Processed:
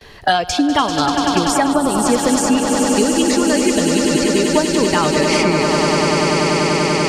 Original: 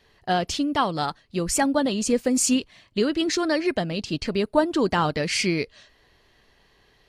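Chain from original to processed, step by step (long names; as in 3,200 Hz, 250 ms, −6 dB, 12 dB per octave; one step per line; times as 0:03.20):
noise gate with hold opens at −53 dBFS
noise reduction from a noise print of the clip's start 16 dB
echo that builds up and dies away 97 ms, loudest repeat 8, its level −10 dB
gain on a spectral selection 0:01.73–0:02.06, 1,500–7,600 Hz −10 dB
multiband upward and downward compressor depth 100%
level +5 dB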